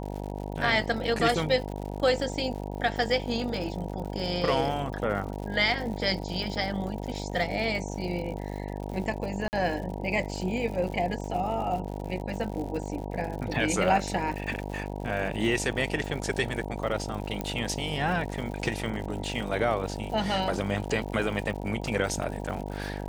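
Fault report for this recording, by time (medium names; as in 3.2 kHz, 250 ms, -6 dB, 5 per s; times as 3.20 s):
buzz 50 Hz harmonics 19 -35 dBFS
crackle 120 per s -36 dBFS
9.48–9.53 s: dropout 49 ms
17.41 s: pop -16 dBFS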